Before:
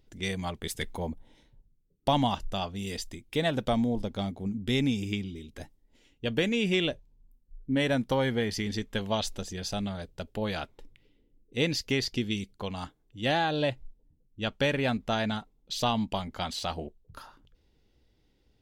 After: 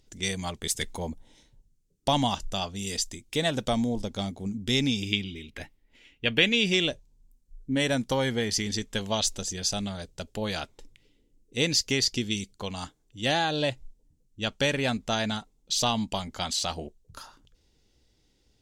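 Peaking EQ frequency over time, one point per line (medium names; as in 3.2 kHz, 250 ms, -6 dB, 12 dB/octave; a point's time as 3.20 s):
peaking EQ +12.5 dB 1.4 oct
4.61 s 6.9 kHz
5.46 s 2.3 kHz
6.32 s 2.3 kHz
6.85 s 7 kHz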